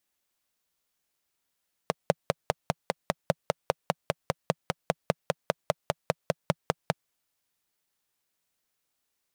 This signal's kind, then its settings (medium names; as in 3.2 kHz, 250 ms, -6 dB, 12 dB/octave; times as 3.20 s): single-cylinder engine model, steady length 5.03 s, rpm 600, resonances 160/550 Hz